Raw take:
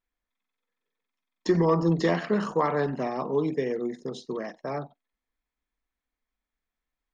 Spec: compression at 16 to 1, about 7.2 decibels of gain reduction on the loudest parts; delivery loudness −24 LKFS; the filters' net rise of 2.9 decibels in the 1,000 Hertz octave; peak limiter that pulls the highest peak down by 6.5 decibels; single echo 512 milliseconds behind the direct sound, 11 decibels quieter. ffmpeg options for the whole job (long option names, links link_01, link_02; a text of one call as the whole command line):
ffmpeg -i in.wav -af "equalizer=frequency=1000:width_type=o:gain=3.5,acompressor=threshold=-24dB:ratio=16,alimiter=limit=-21.5dB:level=0:latency=1,aecho=1:1:512:0.282,volume=8dB" out.wav